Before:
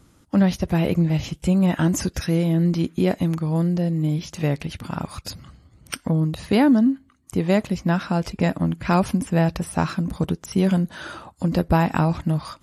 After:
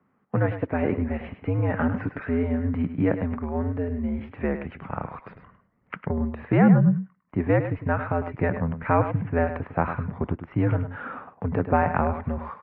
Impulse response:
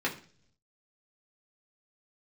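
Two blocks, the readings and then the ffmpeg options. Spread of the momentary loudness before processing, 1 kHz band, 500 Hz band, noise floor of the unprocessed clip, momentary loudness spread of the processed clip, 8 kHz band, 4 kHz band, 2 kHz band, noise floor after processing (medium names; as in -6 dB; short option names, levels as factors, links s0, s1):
12 LU, 0.0 dB, -1.0 dB, -57 dBFS, 10 LU, under -40 dB, under -20 dB, -0.5 dB, -67 dBFS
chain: -filter_complex "[0:a]asubboost=boost=2:cutoff=220,agate=range=0.398:threshold=0.0126:ratio=16:detection=peak,highpass=f=250:t=q:w=0.5412,highpass=f=250:t=q:w=1.307,lowpass=f=2200:t=q:w=0.5176,lowpass=f=2200:t=q:w=0.7071,lowpass=f=2200:t=q:w=1.932,afreqshift=-82,asplit=2[s0][s1];[s1]aecho=0:1:103:0.316[s2];[s0][s2]amix=inputs=2:normalize=0,volume=1.12"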